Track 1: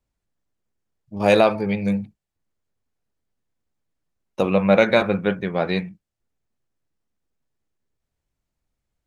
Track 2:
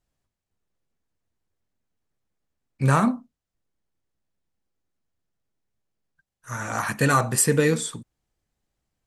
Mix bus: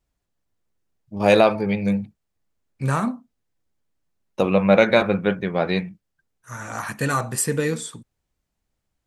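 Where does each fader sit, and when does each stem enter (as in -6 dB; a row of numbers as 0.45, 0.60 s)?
+0.5, -3.0 dB; 0.00, 0.00 s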